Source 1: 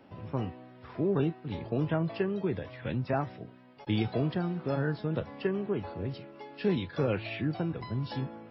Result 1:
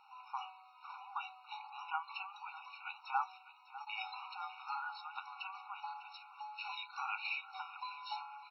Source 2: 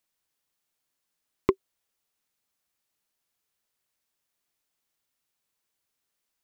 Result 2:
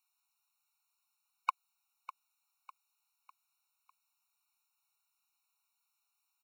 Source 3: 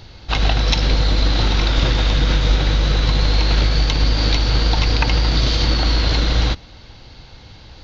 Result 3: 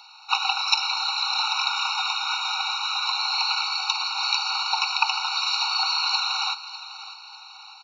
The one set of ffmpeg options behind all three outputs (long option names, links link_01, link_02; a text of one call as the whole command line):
ffmpeg -i in.wav -af "aecho=1:1:601|1202|1803|2404:0.178|0.0765|0.0329|0.0141,afftfilt=real='re*eq(mod(floor(b*sr/1024/740),2),1)':imag='im*eq(mod(floor(b*sr/1024/740),2),1)':win_size=1024:overlap=0.75,volume=2dB" out.wav